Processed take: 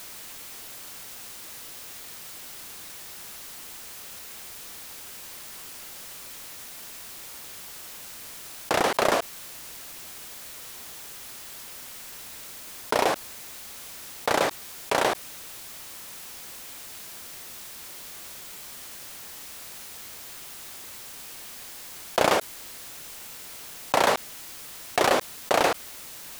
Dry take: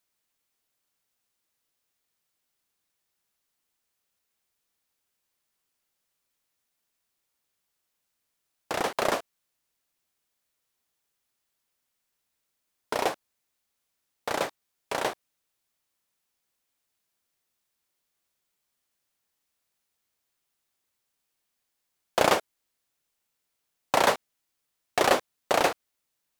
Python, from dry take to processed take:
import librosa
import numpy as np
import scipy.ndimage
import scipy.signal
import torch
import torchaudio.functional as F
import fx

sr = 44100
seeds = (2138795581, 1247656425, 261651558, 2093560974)

y = fx.env_flatten(x, sr, amount_pct=70)
y = y * librosa.db_to_amplitude(-1.5)